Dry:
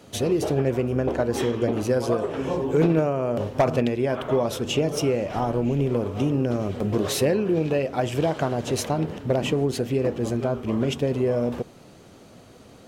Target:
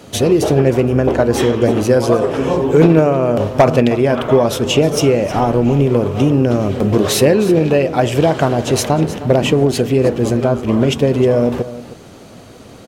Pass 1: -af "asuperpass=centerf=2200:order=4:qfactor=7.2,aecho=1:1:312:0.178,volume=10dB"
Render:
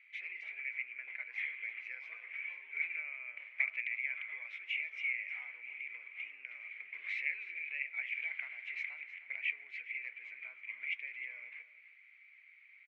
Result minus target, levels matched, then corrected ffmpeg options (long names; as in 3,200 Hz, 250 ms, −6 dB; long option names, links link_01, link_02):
2,000 Hz band +16.5 dB
-af "aecho=1:1:312:0.178,volume=10dB"